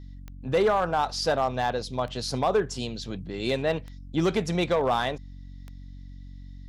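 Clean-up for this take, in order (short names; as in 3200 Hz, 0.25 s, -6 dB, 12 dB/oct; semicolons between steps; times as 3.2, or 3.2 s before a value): clip repair -16.5 dBFS; de-click; de-hum 46.4 Hz, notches 6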